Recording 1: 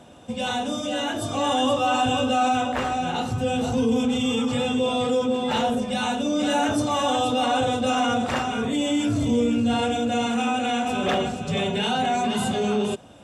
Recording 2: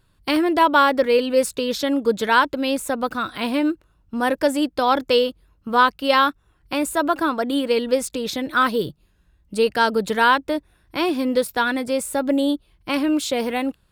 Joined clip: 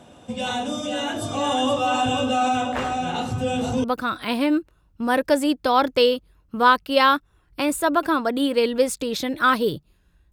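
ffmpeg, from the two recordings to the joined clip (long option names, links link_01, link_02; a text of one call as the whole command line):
ffmpeg -i cue0.wav -i cue1.wav -filter_complex "[0:a]apad=whole_dur=10.32,atrim=end=10.32,atrim=end=3.842[link_01];[1:a]atrim=start=2.968:end=9.45[link_02];[link_01][link_02]acrossfade=duration=0.004:curve1=hsin:curve2=hsin" out.wav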